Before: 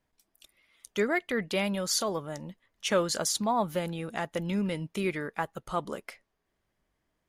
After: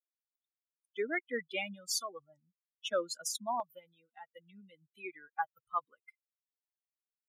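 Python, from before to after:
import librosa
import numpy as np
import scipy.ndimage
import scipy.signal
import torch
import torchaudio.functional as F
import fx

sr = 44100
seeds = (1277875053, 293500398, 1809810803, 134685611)

y = fx.bin_expand(x, sr, power=3.0)
y = fx.highpass(y, sr, hz=fx.steps((0.0, 310.0), (3.6, 690.0)), slope=12)
y = fx.rider(y, sr, range_db=5, speed_s=0.5)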